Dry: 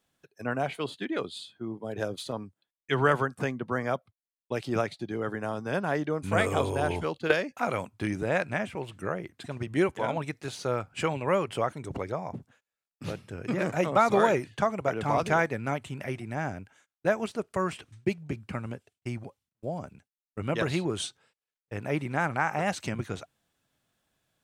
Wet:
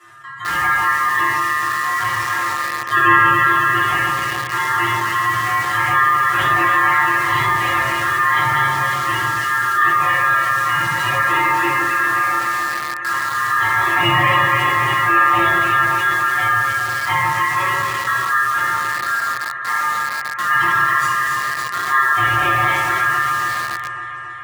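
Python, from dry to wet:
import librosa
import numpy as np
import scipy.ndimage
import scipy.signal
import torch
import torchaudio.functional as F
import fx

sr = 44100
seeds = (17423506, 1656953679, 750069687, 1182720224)

p1 = fx.low_shelf_res(x, sr, hz=460.0, db=7.5, q=1.5)
p2 = fx.stiff_resonator(p1, sr, f0_hz=140.0, decay_s=0.39, stiffness=0.008)
p3 = p2 * np.sin(2.0 * np.pi * 1500.0 * np.arange(len(p2)) / sr)
p4 = scipy.signal.sosfilt(scipy.signal.butter(2, 9100.0, 'lowpass', fs=sr, output='sos'), p3)
p5 = fx.peak_eq(p4, sr, hz=4900.0, db=-9.5, octaves=0.68)
p6 = p5 + fx.echo_alternate(p5, sr, ms=139, hz=1400.0, feedback_pct=72, wet_db=-3, dry=0)
p7 = fx.room_shoebox(p6, sr, seeds[0], volume_m3=170.0, walls='mixed', distance_m=3.1)
p8 = fx.quant_dither(p7, sr, seeds[1], bits=6, dither='none')
p9 = p7 + F.gain(torch.from_numpy(p8), -4.0).numpy()
p10 = scipy.signal.sosfilt(scipy.signal.butter(2, 75.0, 'highpass', fs=sr, output='sos'), p9)
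p11 = fx.env_flatten(p10, sr, amount_pct=50)
y = F.gain(torch.from_numpy(p11), 1.5).numpy()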